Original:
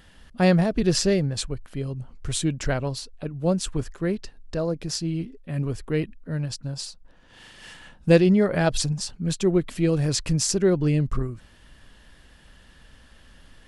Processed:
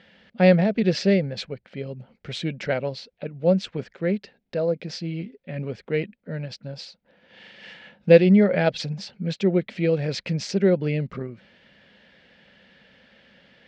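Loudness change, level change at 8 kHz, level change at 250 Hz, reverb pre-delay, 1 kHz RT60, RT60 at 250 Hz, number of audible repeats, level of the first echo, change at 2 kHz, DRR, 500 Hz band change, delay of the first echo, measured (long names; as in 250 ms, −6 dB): +1.5 dB, below −10 dB, +0.5 dB, no reverb audible, no reverb audible, no reverb audible, no echo audible, no echo audible, +2.0 dB, no reverb audible, +3.0 dB, no echo audible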